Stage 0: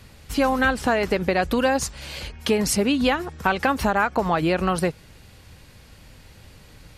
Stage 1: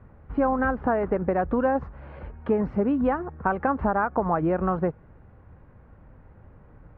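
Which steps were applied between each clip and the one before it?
LPF 1400 Hz 24 dB/oct; gain -2 dB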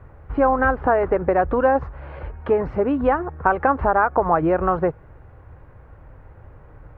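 bell 210 Hz -12.5 dB 0.62 oct; gain +7 dB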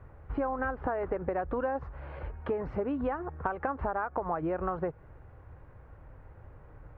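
compressor 5:1, threshold -22 dBFS, peak gain reduction 9.5 dB; gain -6.5 dB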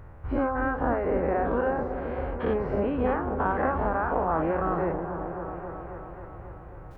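spectral dilation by 0.12 s; repeats that get brighter 0.271 s, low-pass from 400 Hz, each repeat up 1 oct, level -6 dB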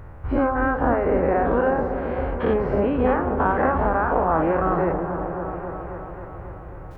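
reverb RT60 2.7 s, pre-delay 48 ms, DRR 14.5 dB; gain +5.5 dB

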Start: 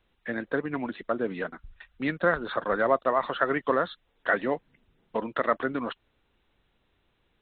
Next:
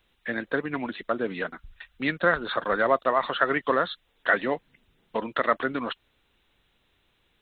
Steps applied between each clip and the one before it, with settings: high shelf 2200 Hz +10 dB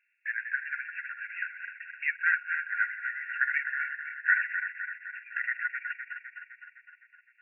regenerating reverse delay 0.128 s, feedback 77%, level -7 dB; brick-wall FIR band-pass 1400–2800 Hz

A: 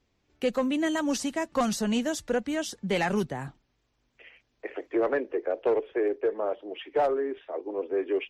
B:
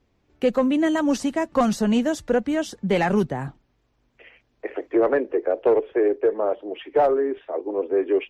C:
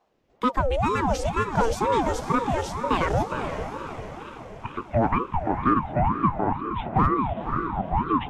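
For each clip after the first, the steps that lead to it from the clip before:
high shelf 2100 Hz -9 dB; gain +7 dB
diffused feedback echo 0.501 s, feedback 53%, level -8 dB; ring modulator with a swept carrier 490 Hz, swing 55%, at 2.1 Hz

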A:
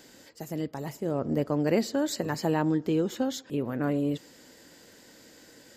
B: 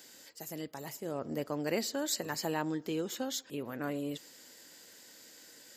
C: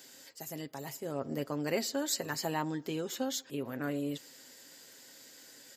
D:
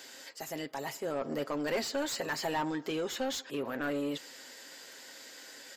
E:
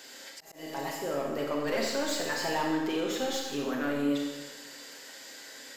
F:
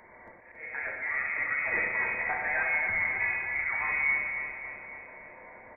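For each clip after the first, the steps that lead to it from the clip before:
tilt +2.5 dB/oct; gain -5 dB
comb 7.5 ms, depth 39%
overdrive pedal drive 21 dB, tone 2700 Hz, clips at -18 dBFS; gain -4.5 dB
Schroeder reverb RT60 1.2 s, combs from 28 ms, DRR -0.5 dB; auto swell 0.23 s
inverted band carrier 2500 Hz; feedback echo 0.277 s, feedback 55%, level -7 dB

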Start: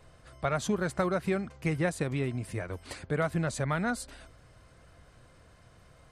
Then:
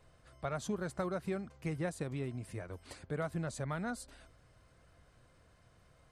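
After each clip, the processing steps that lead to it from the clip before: dynamic EQ 2200 Hz, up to -4 dB, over -49 dBFS, Q 1.1; gain -7.5 dB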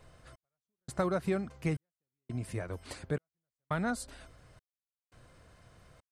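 step gate "xx...xxx" 85 bpm -60 dB; gain +6 dB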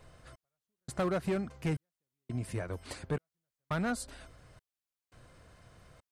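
overloaded stage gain 27.5 dB; gain +1 dB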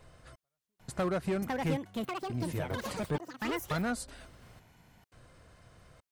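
echoes that change speed 0.796 s, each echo +6 st, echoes 3

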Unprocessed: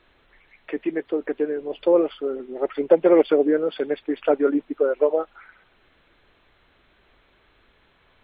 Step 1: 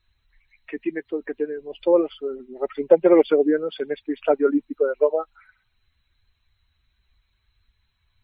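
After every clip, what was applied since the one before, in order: per-bin expansion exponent 1.5; gain +2.5 dB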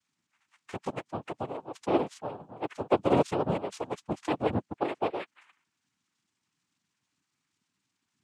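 noise vocoder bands 4; dynamic EQ 840 Hz, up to -7 dB, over -30 dBFS, Q 1.2; gain -6.5 dB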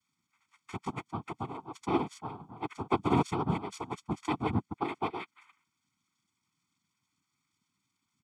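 comb 0.9 ms, depth 96%; gain -3.5 dB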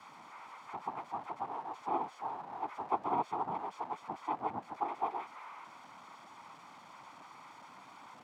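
zero-crossing step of -34.5 dBFS; band-pass 820 Hz, Q 2.3

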